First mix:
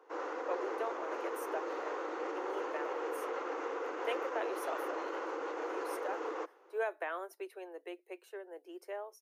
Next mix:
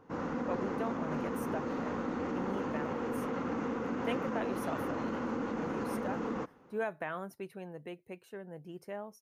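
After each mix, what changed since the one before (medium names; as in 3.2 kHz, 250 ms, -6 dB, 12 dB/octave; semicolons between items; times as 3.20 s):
master: remove steep high-pass 330 Hz 72 dB/octave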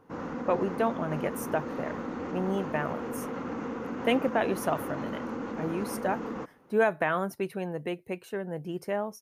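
speech +11.0 dB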